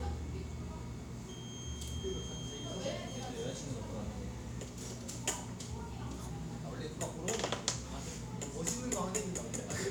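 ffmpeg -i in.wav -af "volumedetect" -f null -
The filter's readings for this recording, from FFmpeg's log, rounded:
mean_volume: -40.2 dB
max_volume: -15.2 dB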